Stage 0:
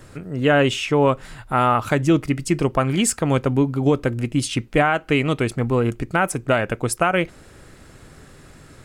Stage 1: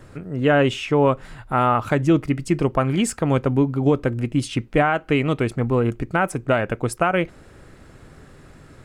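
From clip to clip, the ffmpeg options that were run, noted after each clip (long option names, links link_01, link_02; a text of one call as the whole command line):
ffmpeg -i in.wav -af "highshelf=frequency=3100:gain=-8" out.wav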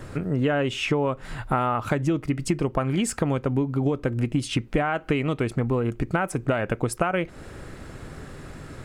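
ffmpeg -i in.wav -af "acompressor=threshold=-26dB:ratio=10,volume=6dB" out.wav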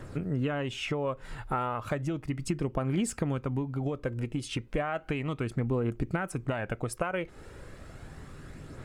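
ffmpeg -i in.wav -af "aphaser=in_gain=1:out_gain=1:delay=2.4:decay=0.32:speed=0.34:type=triangular,volume=-7.5dB" out.wav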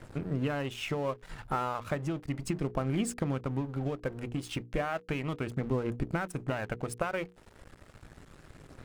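ffmpeg -i in.wav -af "aeval=exprs='sgn(val(0))*max(abs(val(0))-0.00501,0)':channel_layout=same,bandreject=frequency=60:width_type=h:width=6,bandreject=frequency=120:width_type=h:width=6,bandreject=frequency=180:width_type=h:width=6,bandreject=frequency=240:width_type=h:width=6,bandreject=frequency=300:width_type=h:width=6,bandreject=frequency=360:width_type=h:width=6,bandreject=frequency=420:width_type=h:width=6,bandreject=frequency=480:width_type=h:width=6" out.wav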